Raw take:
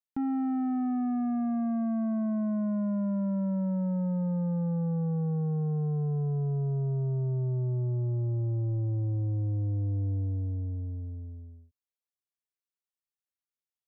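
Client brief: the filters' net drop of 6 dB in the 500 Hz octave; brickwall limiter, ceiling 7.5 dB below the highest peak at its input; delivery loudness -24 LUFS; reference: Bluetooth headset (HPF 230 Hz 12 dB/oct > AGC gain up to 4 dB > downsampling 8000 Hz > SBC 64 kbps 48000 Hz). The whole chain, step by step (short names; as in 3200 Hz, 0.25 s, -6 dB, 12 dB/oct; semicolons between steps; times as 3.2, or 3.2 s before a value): bell 500 Hz -7.5 dB; limiter -34.5 dBFS; HPF 230 Hz 12 dB/oct; AGC gain up to 4 dB; downsampling 8000 Hz; gain +20.5 dB; SBC 64 kbps 48000 Hz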